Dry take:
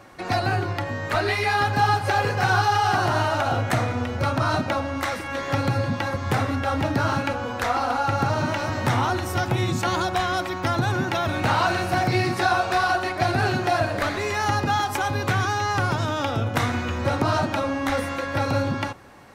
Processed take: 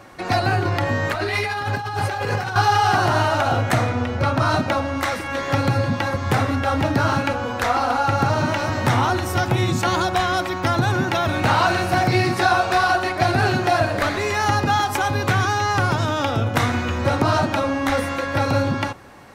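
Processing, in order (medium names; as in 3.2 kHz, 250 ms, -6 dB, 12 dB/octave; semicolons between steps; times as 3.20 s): 0.65–2.56 s: compressor with a negative ratio -27 dBFS, ratio -1; 3.89–4.37 s: treble shelf 10 kHz -> 6.6 kHz -9.5 dB; trim +3.5 dB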